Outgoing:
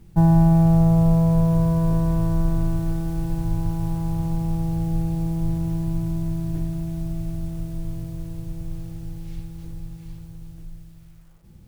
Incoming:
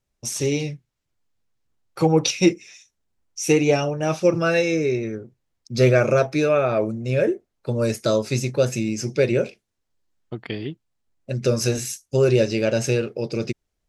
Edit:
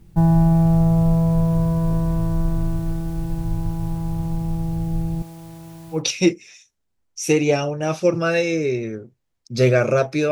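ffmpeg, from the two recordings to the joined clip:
ffmpeg -i cue0.wav -i cue1.wav -filter_complex "[0:a]asettb=1/sr,asplit=3[link_01][link_02][link_03];[link_01]atrim=end=5.224[link_04];[link_02]atrim=start=5.22:end=6.03,asetpts=PTS-STARTPTS,afade=type=in:duration=0.004:curve=qsin,afade=type=out:start_time=0.806:duration=0.004:curve=qsin,highpass=frequency=880:poles=1[link_05];[link_03]atrim=start=6.026[link_06];[link_04][link_05]acrossfade=duration=0.004:curve1=hsin:curve2=qsin[link_07];[link_07][link_06]acrossfade=duration=0.004:curve1=qsin:curve2=hsin,apad=whole_dur=10.31,atrim=end=10.31,atrim=end=6.03,asetpts=PTS-STARTPTS[link_08];[1:a]atrim=start=2.11:end=6.51,asetpts=PTS-STARTPTS[link_09];[link_08][link_09]acrossfade=duration=0.12:curve1=tri:curve2=tri" out.wav

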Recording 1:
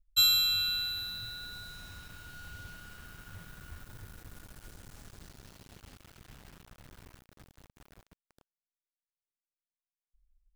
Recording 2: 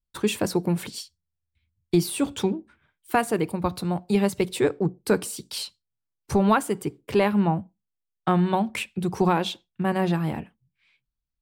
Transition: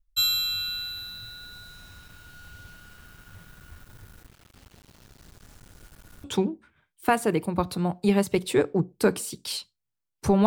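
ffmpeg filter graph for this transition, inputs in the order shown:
ffmpeg -i cue0.wav -i cue1.wav -filter_complex "[0:a]apad=whole_dur=10.46,atrim=end=10.46,asplit=2[link_01][link_02];[link_01]atrim=end=4.272[link_03];[link_02]atrim=start=4.268:end=6.242,asetpts=PTS-STARTPTS,areverse[link_04];[1:a]atrim=start=2.298:end=6.52[link_05];[link_03][link_04]acrossfade=duration=0.004:curve1=hsin:curve2=hsin[link_06];[link_06][link_05]acrossfade=duration=0.004:curve1=hsin:curve2=hsin" out.wav

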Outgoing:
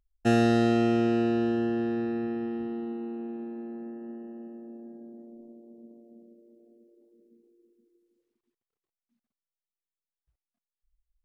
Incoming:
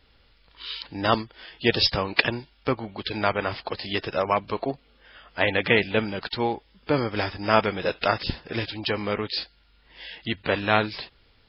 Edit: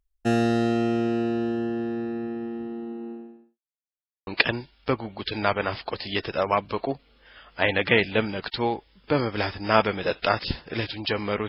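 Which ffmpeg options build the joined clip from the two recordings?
ffmpeg -i cue0.wav -i cue1.wav -filter_complex "[0:a]apad=whole_dur=11.48,atrim=end=11.48,asplit=2[link_01][link_02];[link_01]atrim=end=3.59,asetpts=PTS-STARTPTS,afade=type=out:start_time=3.11:duration=0.48:curve=qua[link_03];[link_02]atrim=start=3.59:end=4.27,asetpts=PTS-STARTPTS,volume=0[link_04];[1:a]atrim=start=2.06:end=9.27,asetpts=PTS-STARTPTS,afade=type=in:duration=0.004:curve=hsin[link_05];[link_03][link_04][link_05]concat=n=3:v=0:a=1" out.wav

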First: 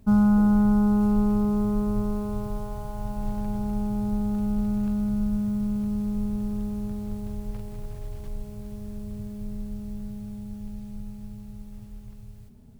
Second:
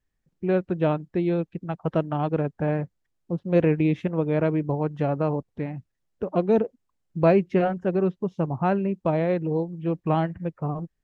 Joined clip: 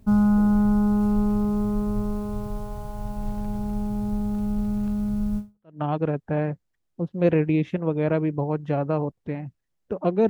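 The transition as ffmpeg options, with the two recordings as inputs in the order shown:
ffmpeg -i cue0.wav -i cue1.wav -filter_complex "[0:a]apad=whole_dur=10.29,atrim=end=10.29,atrim=end=5.8,asetpts=PTS-STARTPTS[link_01];[1:a]atrim=start=1.69:end=6.6,asetpts=PTS-STARTPTS[link_02];[link_01][link_02]acrossfade=duration=0.42:curve1=exp:curve2=exp" out.wav

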